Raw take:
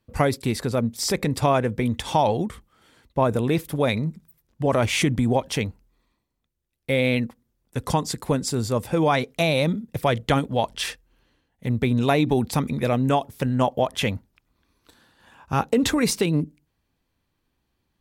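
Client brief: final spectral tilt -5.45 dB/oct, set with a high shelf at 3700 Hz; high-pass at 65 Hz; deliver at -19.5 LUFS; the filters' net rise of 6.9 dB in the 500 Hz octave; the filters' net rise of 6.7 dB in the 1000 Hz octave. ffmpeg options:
-af "highpass=65,equalizer=f=500:t=o:g=6.5,equalizer=f=1k:t=o:g=6.5,highshelf=f=3.7k:g=-3.5,volume=-0.5dB"

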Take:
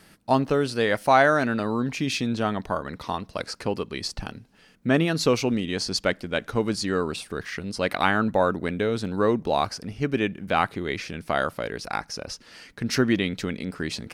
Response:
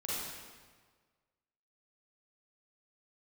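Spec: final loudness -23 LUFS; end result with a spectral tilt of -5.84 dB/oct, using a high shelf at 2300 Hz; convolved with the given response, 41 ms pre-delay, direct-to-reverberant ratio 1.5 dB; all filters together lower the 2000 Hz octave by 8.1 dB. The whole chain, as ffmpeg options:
-filter_complex "[0:a]equalizer=f=2k:t=o:g=-8,highshelf=f=2.3k:g=-7,asplit=2[a][b];[1:a]atrim=start_sample=2205,adelay=41[c];[b][c]afir=irnorm=-1:irlink=0,volume=-5dB[d];[a][d]amix=inputs=2:normalize=0,volume=1.5dB"

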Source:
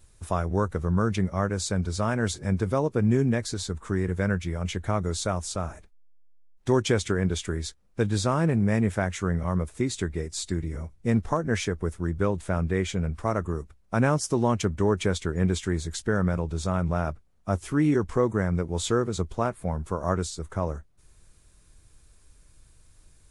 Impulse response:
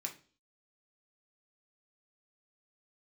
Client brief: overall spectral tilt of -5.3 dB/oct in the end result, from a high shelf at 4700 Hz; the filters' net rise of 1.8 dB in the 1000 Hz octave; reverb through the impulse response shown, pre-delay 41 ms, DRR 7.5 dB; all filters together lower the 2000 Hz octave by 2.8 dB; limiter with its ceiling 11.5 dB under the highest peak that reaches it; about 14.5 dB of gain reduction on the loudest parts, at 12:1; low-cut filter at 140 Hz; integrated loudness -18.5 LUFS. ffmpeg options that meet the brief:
-filter_complex "[0:a]highpass=140,equalizer=f=1k:t=o:g=4,equalizer=f=2k:t=o:g=-4.5,highshelf=f=4.7k:g=-9,acompressor=threshold=-33dB:ratio=12,alimiter=level_in=4.5dB:limit=-24dB:level=0:latency=1,volume=-4.5dB,asplit=2[a][b];[1:a]atrim=start_sample=2205,adelay=41[c];[b][c]afir=irnorm=-1:irlink=0,volume=-6.5dB[d];[a][d]amix=inputs=2:normalize=0,volume=22dB"

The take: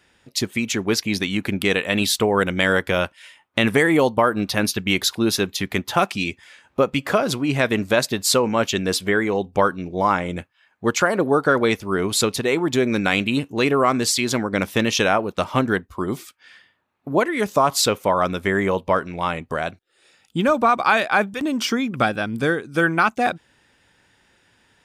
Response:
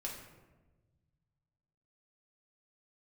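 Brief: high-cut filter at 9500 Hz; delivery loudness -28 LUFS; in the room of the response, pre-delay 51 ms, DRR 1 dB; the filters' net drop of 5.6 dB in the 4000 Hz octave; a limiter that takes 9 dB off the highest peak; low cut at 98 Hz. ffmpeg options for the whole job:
-filter_complex "[0:a]highpass=98,lowpass=9.5k,equalizer=f=4k:t=o:g=-7,alimiter=limit=-12.5dB:level=0:latency=1,asplit=2[a][b];[1:a]atrim=start_sample=2205,adelay=51[c];[b][c]afir=irnorm=-1:irlink=0,volume=-0.5dB[d];[a][d]amix=inputs=2:normalize=0,volume=-6dB"

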